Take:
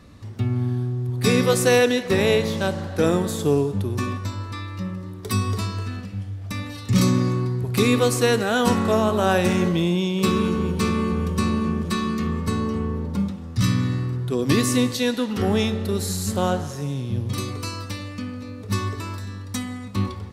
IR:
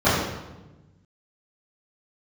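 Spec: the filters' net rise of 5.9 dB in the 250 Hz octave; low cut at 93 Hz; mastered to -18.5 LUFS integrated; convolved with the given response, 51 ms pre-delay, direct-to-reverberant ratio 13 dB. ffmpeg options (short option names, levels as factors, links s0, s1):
-filter_complex "[0:a]highpass=93,equalizer=f=250:t=o:g=7.5,asplit=2[s0][s1];[1:a]atrim=start_sample=2205,adelay=51[s2];[s1][s2]afir=irnorm=-1:irlink=0,volume=0.0178[s3];[s0][s3]amix=inputs=2:normalize=0"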